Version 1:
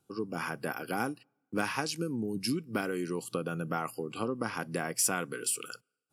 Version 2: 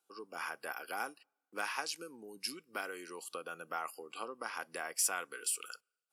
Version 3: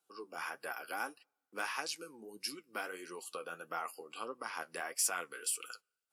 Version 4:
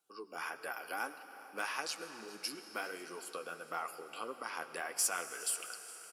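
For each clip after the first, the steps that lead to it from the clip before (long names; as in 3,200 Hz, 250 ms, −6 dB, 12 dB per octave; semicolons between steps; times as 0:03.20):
high-pass filter 660 Hz 12 dB per octave; level −3.5 dB
flanger 1.6 Hz, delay 5.6 ms, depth 9 ms, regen +40%; level +3.5 dB
single-tap delay 413 ms −19.5 dB; on a send at −10.5 dB: convolution reverb RT60 5.0 s, pre-delay 55 ms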